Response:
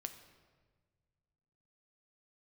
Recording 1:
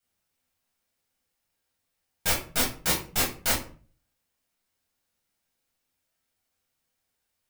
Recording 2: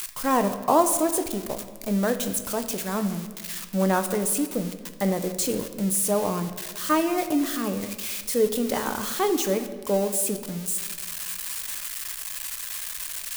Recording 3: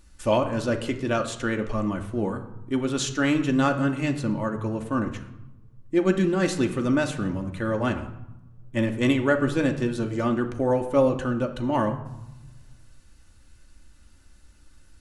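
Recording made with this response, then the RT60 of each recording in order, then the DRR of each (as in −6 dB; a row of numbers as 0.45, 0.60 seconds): 2; 0.40, 1.5, 0.95 seconds; −5.5, 7.5, 3.5 decibels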